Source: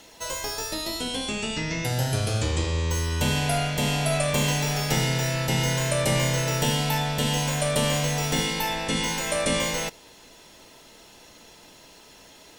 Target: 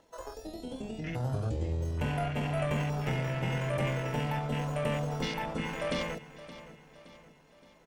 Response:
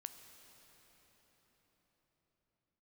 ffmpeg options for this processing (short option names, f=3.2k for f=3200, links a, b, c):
-filter_complex "[0:a]afwtdn=0.0355,acrossover=split=1400[a][b];[a]acompressor=mode=upward:threshold=-48dB:ratio=2.5[c];[c][b]amix=inputs=2:normalize=0,atempo=1.6,aecho=1:1:570|1140|1710|2280:0.168|0.0823|0.0403|0.0198,volume=-6dB"